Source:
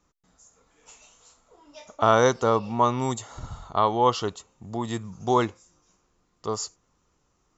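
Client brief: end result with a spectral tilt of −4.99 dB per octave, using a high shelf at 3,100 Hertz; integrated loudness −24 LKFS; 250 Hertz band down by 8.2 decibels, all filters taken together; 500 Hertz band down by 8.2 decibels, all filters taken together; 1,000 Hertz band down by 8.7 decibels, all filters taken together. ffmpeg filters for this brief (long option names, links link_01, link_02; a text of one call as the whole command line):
ffmpeg -i in.wav -af "equalizer=frequency=250:width_type=o:gain=-8,equalizer=frequency=500:width_type=o:gain=-5.5,equalizer=frequency=1000:width_type=o:gain=-8,highshelf=frequency=3100:gain=-6.5,volume=8.5dB" out.wav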